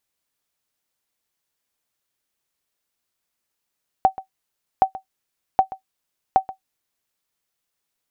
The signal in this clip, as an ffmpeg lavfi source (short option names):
-f lavfi -i "aevalsrc='0.562*(sin(2*PI*765*mod(t,0.77))*exp(-6.91*mod(t,0.77)/0.11)+0.133*sin(2*PI*765*max(mod(t,0.77)-0.13,0))*exp(-6.91*max(mod(t,0.77)-0.13,0)/0.11))':d=3.08:s=44100"